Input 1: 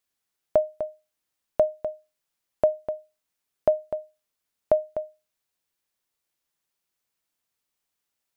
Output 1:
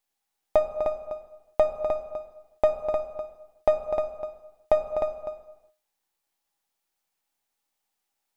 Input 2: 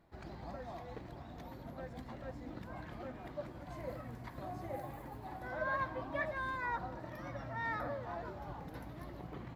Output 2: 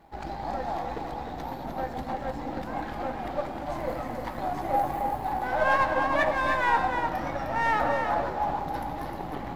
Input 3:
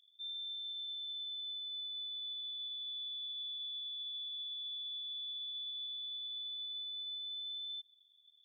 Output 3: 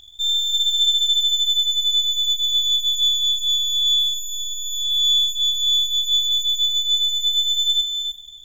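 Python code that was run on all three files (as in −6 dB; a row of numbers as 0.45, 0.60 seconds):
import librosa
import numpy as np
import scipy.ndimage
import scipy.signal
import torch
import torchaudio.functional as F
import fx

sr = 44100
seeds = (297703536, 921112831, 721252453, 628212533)

p1 = np.where(x < 0.0, 10.0 ** (-7.0 / 20.0) * x, x)
p2 = fx.peak_eq(p1, sr, hz=810.0, db=12.5, octaves=0.22)
p3 = p2 + fx.echo_single(p2, sr, ms=306, db=-6.0, dry=0)
p4 = fx.rev_gated(p3, sr, seeds[0], gate_ms=440, shape='falling', drr_db=9.5)
p5 = 10.0 ** (-19.5 / 20.0) * np.tanh(p4 / 10.0 ** (-19.5 / 20.0))
p6 = p4 + (p5 * 10.0 ** (-7.0 / 20.0))
p7 = fx.peak_eq(p6, sr, hz=120.0, db=-8.5, octaves=0.61)
y = librosa.util.normalize(p7) * 10.0 ** (-9 / 20.0)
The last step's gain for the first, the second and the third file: −1.5, +10.0, +21.5 decibels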